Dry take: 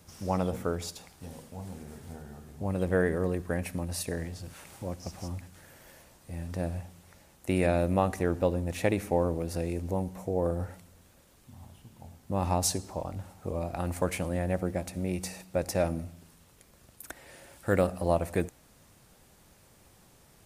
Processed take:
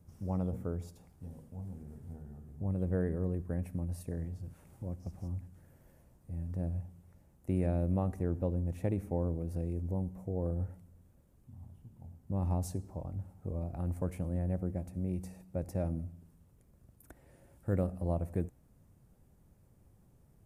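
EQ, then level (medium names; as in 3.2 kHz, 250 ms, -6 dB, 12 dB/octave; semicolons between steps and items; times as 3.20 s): FFT filter 120 Hz 0 dB, 4.1 kHz -24 dB, 12 kHz -15 dB; 0.0 dB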